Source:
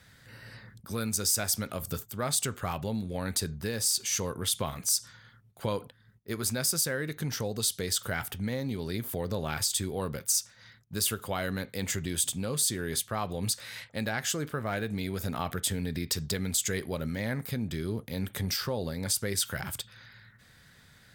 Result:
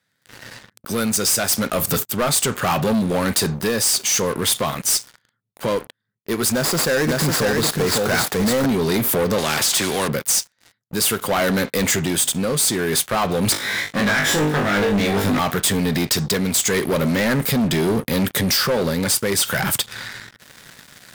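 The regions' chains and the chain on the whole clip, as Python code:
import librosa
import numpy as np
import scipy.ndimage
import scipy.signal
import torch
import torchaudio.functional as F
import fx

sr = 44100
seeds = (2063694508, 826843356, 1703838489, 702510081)

y = fx.chain(x, sr, fx.median_filter(points=15),
    fx.high_shelf(hz=3500.0, db=10.5),
    fx.echo_single(ms=550, db=-4.5), at=(6.52, 8.66))
y = fx.chain(y, sr, fx.block_float(bits=7),
    fx.bandpass_edges(low_hz=120.0, high_hz=7500.0),
    fx.spectral_comp(ratio=2.0), at=(9.38, 10.08))
y = fx.chain(y, sr, fx.lower_of_two(delay_ms=0.54),
    fx.high_shelf(hz=5700.0, db=-12.0),
    fx.room_flutter(wall_m=3.4, rt60_s=0.32), at=(13.52, 15.39))
y = scipy.signal.sosfilt(scipy.signal.butter(2, 170.0, 'highpass', fs=sr, output='sos'), y)
y = fx.rider(y, sr, range_db=4, speed_s=0.5)
y = fx.leveller(y, sr, passes=5)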